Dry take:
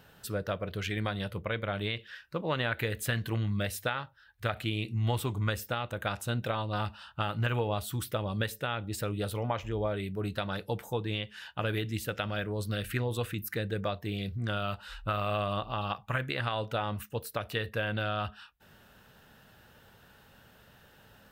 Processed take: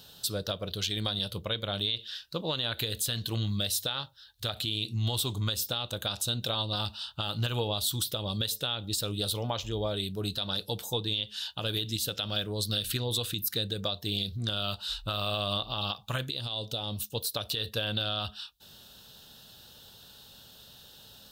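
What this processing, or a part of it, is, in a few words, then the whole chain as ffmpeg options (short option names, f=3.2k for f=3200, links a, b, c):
over-bright horn tweeter: -filter_complex "[0:a]highshelf=f=2.8k:t=q:w=3:g=10.5,alimiter=limit=-18.5dB:level=0:latency=1:release=119,asettb=1/sr,asplit=3[a][b][c];[a]atrim=end=16.304[d];[b]atrim=start=16.3:end=17.13,asetpts=PTS-STARTPTS,afade=t=in:d=0.004:c=qsin,afade=t=out:st=0.826:d=0.004:c=qsin,equalizer=f=1.5k:w=0.98:g=-11[e];[c]atrim=start=17.126[f];[d][e]acrossfade=d=0.004:c1=hsin:c2=qsin[g];[g][f]acrossfade=d=0.004:c1=qsin:c2=hsin"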